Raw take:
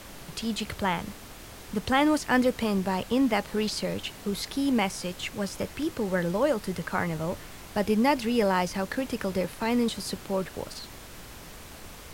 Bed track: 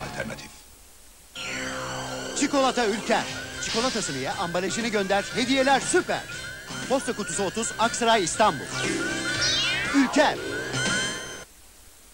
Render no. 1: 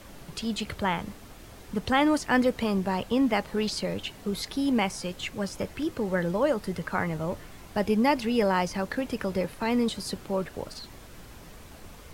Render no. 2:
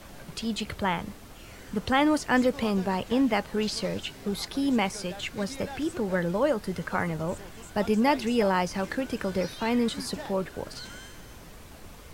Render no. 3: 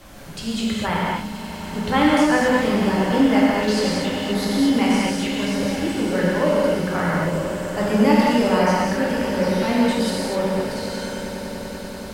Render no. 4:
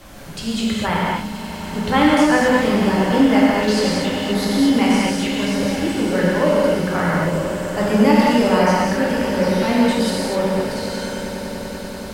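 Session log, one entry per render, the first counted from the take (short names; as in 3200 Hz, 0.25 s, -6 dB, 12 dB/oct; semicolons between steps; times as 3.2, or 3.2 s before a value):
denoiser 6 dB, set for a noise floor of -45 dBFS
add bed track -20.5 dB
swelling echo 97 ms, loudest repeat 8, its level -18 dB; non-linear reverb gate 0.28 s flat, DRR -5.5 dB
gain +2.5 dB; limiter -3 dBFS, peak gain reduction 1.5 dB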